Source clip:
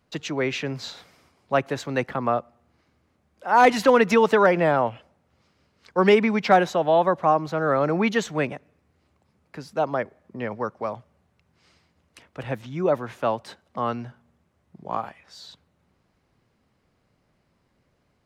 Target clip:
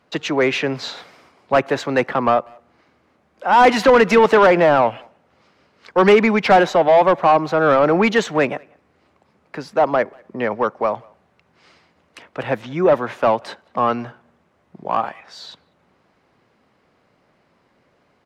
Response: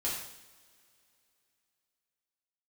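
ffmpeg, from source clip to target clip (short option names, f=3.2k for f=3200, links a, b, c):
-filter_complex "[0:a]asplit=2[a][b];[b]highpass=f=720:p=1,volume=17dB,asoftclip=type=tanh:threshold=-6dB[c];[a][c]amix=inputs=2:normalize=0,lowpass=f=2.6k:p=1,volume=-6dB,equalizer=f=250:w=0.39:g=4,asplit=2[d][e];[e]adelay=190,highpass=300,lowpass=3.4k,asoftclip=type=hard:threshold=-12dB,volume=-28dB[f];[d][f]amix=inputs=2:normalize=0"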